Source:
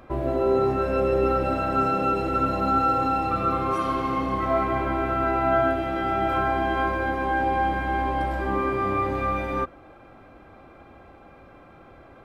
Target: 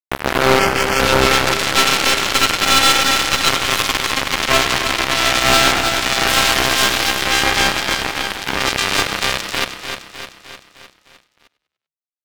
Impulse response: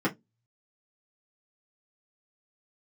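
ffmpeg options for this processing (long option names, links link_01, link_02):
-filter_complex "[0:a]asettb=1/sr,asplit=3[link_01][link_02][link_03];[link_01]atrim=end=6.274[link_04];[link_02]atrim=start=6.27:end=7.24,asetpts=PTS-STARTPTS,afade=type=in:duration=0.004:curve=qsin,afade=type=out:start_time=0.966:duration=0.004:curve=qsin,highshelf=frequency=2900:gain=7.5[link_05];[link_03]atrim=start=7.236[link_06];[link_04][link_05]acrossfade=duration=0.004:curve1=hsin:curve2=qsin[link_07];[link_07][link_06]acrossfade=duration=0.004:curve1=qsin:curve2=hsin,acrusher=bits=2:mix=0:aa=0.5,asplit=2[link_08][link_09];[link_09]asplit=4[link_10][link_11][link_12][link_13];[link_10]adelay=98,afreqshift=37,volume=-19.5dB[link_14];[link_11]adelay=196,afreqshift=74,volume=-24.9dB[link_15];[link_12]adelay=294,afreqshift=111,volume=-30.2dB[link_16];[link_13]adelay=392,afreqshift=148,volume=-35.6dB[link_17];[link_14][link_15][link_16][link_17]amix=inputs=4:normalize=0[link_18];[link_08][link_18]amix=inputs=2:normalize=0,crystalizer=i=5:c=0,asplit=3[link_19][link_20][link_21];[link_19]afade=type=out:start_time=7.95:duration=0.02[link_22];[link_20]acompressor=threshold=-32dB:ratio=6,afade=type=in:start_time=7.95:duration=0.02,afade=type=out:start_time=8.6:duration=0.02[link_23];[link_21]afade=type=in:start_time=8.6:duration=0.02[link_24];[link_22][link_23][link_24]amix=inputs=3:normalize=0,aeval=exprs='(tanh(11.2*val(0)+0.5)-tanh(0.5))/11.2':channel_layout=same,asettb=1/sr,asplit=3[link_25][link_26][link_27];[link_25]atrim=end=0.594[link_28];[link_26]atrim=start=0.59:end=1,asetpts=PTS-STARTPTS,afade=type=in:duration=0.004:curve=qsin,afade=type=out:start_time=0.406:duration=0.004:curve=qsin,asuperstop=centerf=3800:order=4:qfactor=3.6[link_29];[link_27]atrim=start=0.996[link_30];[link_28][link_29]acrossfade=duration=0.004:curve1=hsin:curve2=qsin[link_31];[link_31][link_30]acrossfade=duration=0.004:curve1=qsin:curve2=hsin,asplit=2[link_32][link_33];[link_33]aecho=0:1:305|610|915|1220|1525|1830:0.224|0.125|0.0702|0.0393|0.022|0.0123[link_34];[link_32][link_34]amix=inputs=2:normalize=0,alimiter=level_in=22dB:limit=-1dB:release=50:level=0:latency=1,volume=-1dB"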